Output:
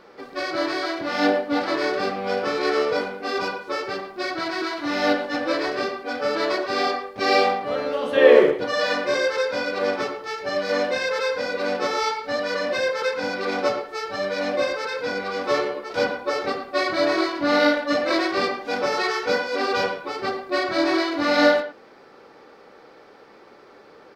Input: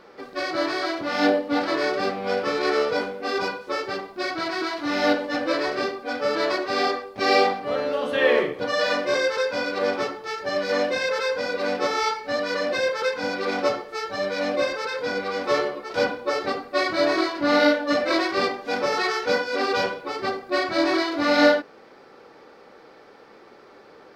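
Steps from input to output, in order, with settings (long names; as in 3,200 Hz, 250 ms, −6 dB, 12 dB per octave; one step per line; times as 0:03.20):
0:08.16–0:08.56: parametric band 430 Hz +8 dB 1.6 octaves
far-end echo of a speakerphone 110 ms, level −10 dB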